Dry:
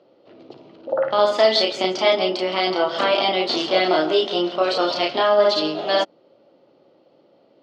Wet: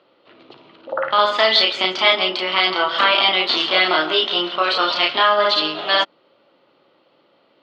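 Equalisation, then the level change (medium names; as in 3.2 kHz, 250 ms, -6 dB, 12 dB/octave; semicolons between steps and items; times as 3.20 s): high-order bell 2 kHz +12 dB 2.4 oct; -4.0 dB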